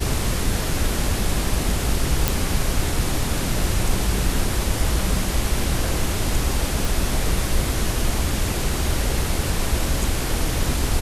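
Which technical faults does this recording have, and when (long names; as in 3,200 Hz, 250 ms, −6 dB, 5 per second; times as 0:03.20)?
0:02.28: click
0:06.85: click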